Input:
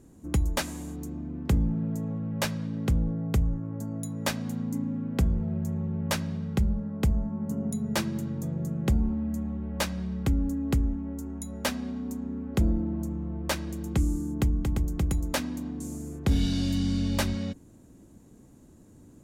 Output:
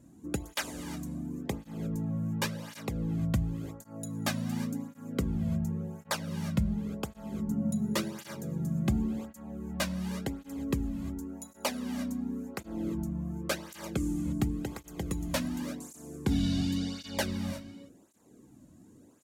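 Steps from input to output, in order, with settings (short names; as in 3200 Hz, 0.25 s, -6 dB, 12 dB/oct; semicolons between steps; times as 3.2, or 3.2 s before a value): non-linear reverb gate 0.38 s rising, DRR 10.5 dB; tape flanging out of phase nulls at 0.91 Hz, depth 2.6 ms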